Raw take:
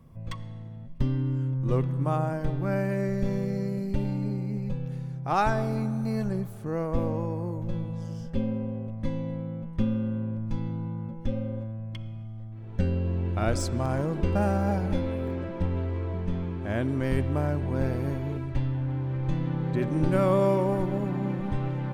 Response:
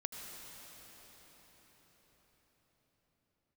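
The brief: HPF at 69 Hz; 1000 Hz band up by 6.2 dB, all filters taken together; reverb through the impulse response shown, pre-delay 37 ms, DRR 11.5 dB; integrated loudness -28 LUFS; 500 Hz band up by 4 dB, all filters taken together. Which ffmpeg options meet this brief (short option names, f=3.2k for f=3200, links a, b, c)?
-filter_complex "[0:a]highpass=69,equalizer=f=500:t=o:g=3,equalizer=f=1k:t=o:g=7,asplit=2[a][b];[1:a]atrim=start_sample=2205,adelay=37[c];[b][c]afir=irnorm=-1:irlink=0,volume=-11dB[d];[a][d]amix=inputs=2:normalize=0,volume=-1.5dB"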